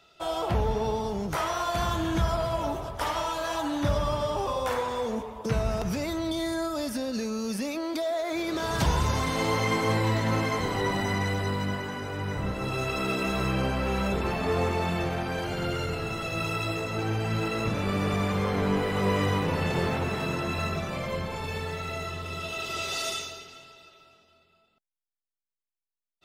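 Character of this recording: noise floor -90 dBFS; spectral tilt -5.5 dB/oct

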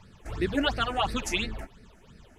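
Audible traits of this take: phasing stages 8, 2.9 Hz, lowest notch 130–1000 Hz

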